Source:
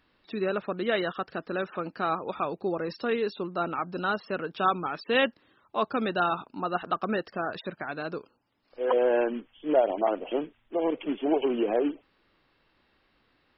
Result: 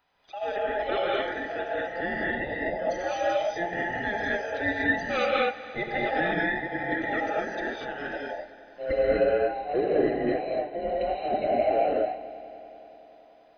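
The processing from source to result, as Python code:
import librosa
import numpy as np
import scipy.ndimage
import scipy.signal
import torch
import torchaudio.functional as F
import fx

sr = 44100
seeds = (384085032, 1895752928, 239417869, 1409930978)

y = fx.band_invert(x, sr, width_hz=1000)
y = fx.echo_heads(y, sr, ms=95, heads='all three', feedback_pct=72, wet_db=-23.0)
y = fx.rev_gated(y, sr, seeds[0], gate_ms=270, shape='rising', drr_db=-4.5)
y = y * librosa.db_to_amplitude(-5.0)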